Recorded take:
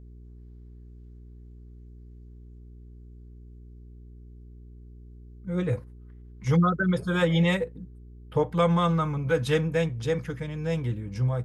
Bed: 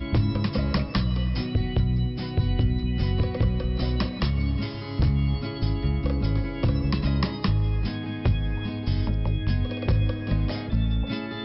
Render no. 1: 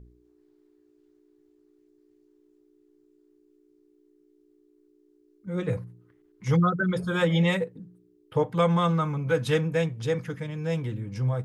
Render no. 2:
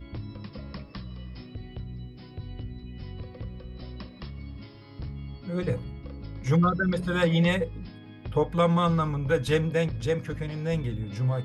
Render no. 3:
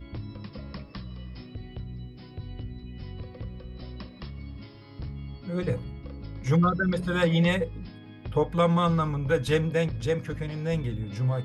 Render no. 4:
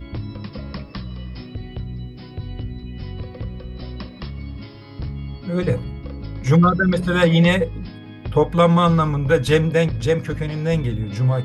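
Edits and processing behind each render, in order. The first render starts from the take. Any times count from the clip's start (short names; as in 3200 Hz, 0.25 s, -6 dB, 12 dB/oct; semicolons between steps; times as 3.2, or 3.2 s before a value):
de-hum 60 Hz, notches 4
add bed -15 dB
nothing audible
gain +8 dB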